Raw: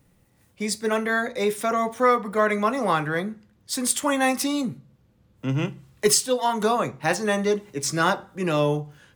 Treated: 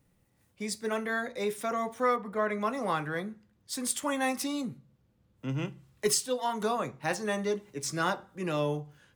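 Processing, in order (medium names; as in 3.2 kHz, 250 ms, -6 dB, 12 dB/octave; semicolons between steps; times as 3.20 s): 2.16–2.61 s: treble shelf 3.5 kHz -9 dB; trim -8 dB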